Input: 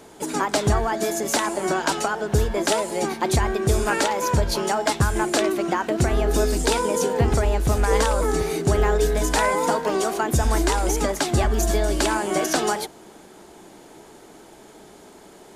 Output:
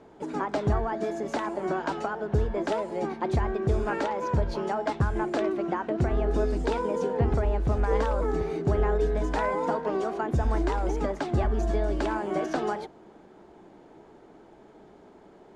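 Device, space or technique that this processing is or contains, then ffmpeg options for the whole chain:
through cloth: -af "lowpass=6400,highshelf=frequency=2700:gain=-17.5,volume=-4.5dB"

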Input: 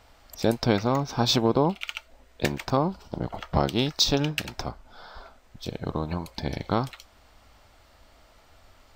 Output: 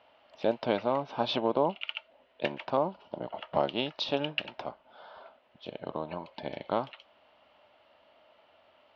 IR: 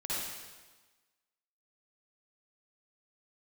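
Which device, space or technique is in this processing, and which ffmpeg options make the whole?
kitchen radio: -af "highpass=210,equalizer=frequency=600:width_type=q:width=4:gain=10,equalizer=frequency=930:width_type=q:width=4:gain=5,equalizer=frequency=2900:width_type=q:width=4:gain=9,lowpass=frequency=3600:width=0.5412,lowpass=frequency=3600:width=1.3066,volume=-7.5dB"

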